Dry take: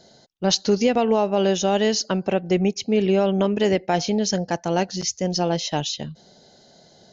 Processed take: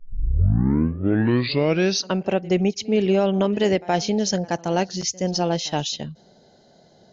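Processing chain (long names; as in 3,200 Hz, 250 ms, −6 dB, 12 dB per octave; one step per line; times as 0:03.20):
turntable start at the beginning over 2.15 s
echo ahead of the sound 72 ms −22 dB
one half of a high-frequency compander decoder only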